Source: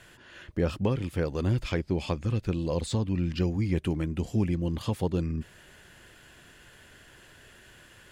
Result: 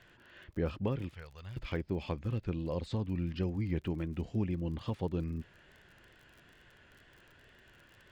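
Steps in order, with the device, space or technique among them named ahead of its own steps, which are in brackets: 1.14–1.57 passive tone stack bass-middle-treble 10-0-10; lo-fi chain (LPF 3600 Hz 12 dB/oct; wow and flutter; crackle 41/s -41 dBFS); gain -6.5 dB

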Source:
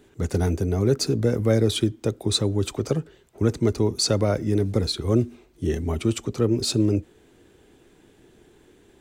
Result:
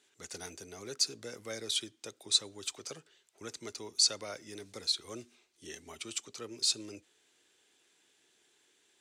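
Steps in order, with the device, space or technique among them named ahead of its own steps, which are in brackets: piezo pickup straight into a mixer (LPF 6400 Hz 12 dB/oct; differentiator); gain +2.5 dB

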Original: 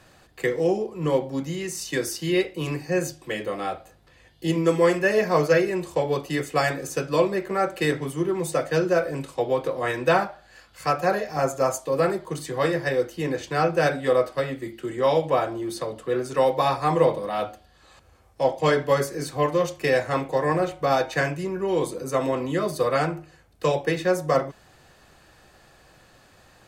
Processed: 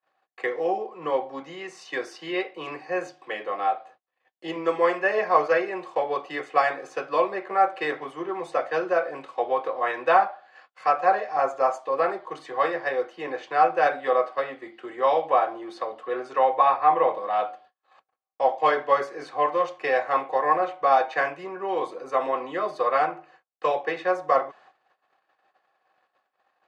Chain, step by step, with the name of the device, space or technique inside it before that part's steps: gate -51 dBFS, range -36 dB; tin-can telephone (BPF 520–2700 Hz; small resonant body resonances 770/1100 Hz, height 9 dB, ringing for 35 ms); 16.38–17.15 Chebyshev low-pass 2800 Hz, order 2

